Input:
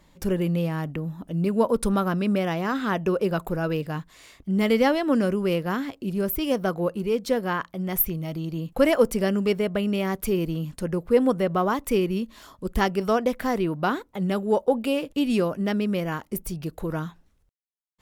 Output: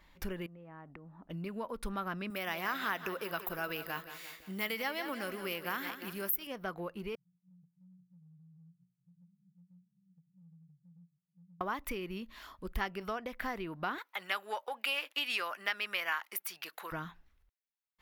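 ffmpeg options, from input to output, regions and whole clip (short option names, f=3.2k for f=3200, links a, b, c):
-filter_complex "[0:a]asettb=1/sr,asplit=3[a][b][c];[a]atrim=end=0.464[d];[b]atrim=start=0.46:end=1.3,asetpts=PTS-STARTPTS,afade=t=in:d=0.004:c=qsin,afade=t=out:st=0.836:d=0.004:c=qsin,lowpass=1.1k,lowshelf=f=130:g=-10.5,acompressor=threshold=-38dB:ratio=10:attack=3.2:release=140:knee=1:detection=peak[e];[c]atrim=start=1.296[f];[d][e]acrossfade=d=0.004:c1=hsin:c2=qsin[g];[g][f]acrossfade=d=0.004:c1=qsin:c2=hsin,asettb=1/sr,asplit=3[h][i][j];[h]atrim=end=2.304[k];[i]atrim=start=2.3:end=6.47,asetpts=PTS-STARTPTS,afade=t=in:d=0.004:c=qsin,afade=t=out:st=4.166:d=0.004:c=qsin,aemphasis=mode=production:type=bsi,aecho=1:1:174|348|522|696|870:0.224|0.114|0.0582|0.0297|0.0151,atrim=end_sample=183897[l];[j]atrim=start=6.466[m];[k][l]acrossfade=d=0.004:c1=hsin:c2=qsin[n];[n][m]acrossfade=d=0.004:c1=qsin:c2=hsin,asettb=1/sr,asplit=3[o][p][q];[o]atrim=end=7.154[r];[p]atrim=start=7.15:end=11.61,asetpts=PTS-STARTPTS,afade=t=in:d=0.004:c=qsin,afade=t=out:st=4.456:d=0.004:c=qsin,asuperpass=centerf=150:order=20:qfactor=2.7,flanger=delay=15:depth=5.3:speed=1.1,acompressor=threshold=-48dB:ratio=4:attack=3.2:release=140:knee=1:detection=peak[s];[q]atrim=start=11.606[t];[r][s]acrossfade=d=0.004:c1=hsin:c2=qsin[u];[u][t]acrossfade=d=0.004:c1=qsin:c2=hsin,asettb=1/sr,asplit=3[v][w][x];[v]atrim=end=13.984[y];[w]atrim=start=13.98:end=16.92,asetpts=PTS-STARTPTS,afade=t=in:d=0.004:c=qsin,afade=t=out:st=2.936:d=0.004:c=qsin,highpass=1.1k,acontrast=90[z];[x]atrim=start=16.916[aa];[y][z]acrossfade=d=0.004:c1=hsin:c2=qsin[ab];[ab][aa]acrossfade=d=0.004:c1=qsin:c2=hsin,acompressor=threshold=-27dB:ratio=6,equalizer=f=125:t=o:w=1:g=-11,equalizer=f=250:t=o:w=1:g=-5,equalizer=f=500:t=o:w=1:g=-7,equalizer=f=2k:t=o:w=1:g=4,equalizer=f=8k:t=o:w=1:g=-11,volume=-2.5dB"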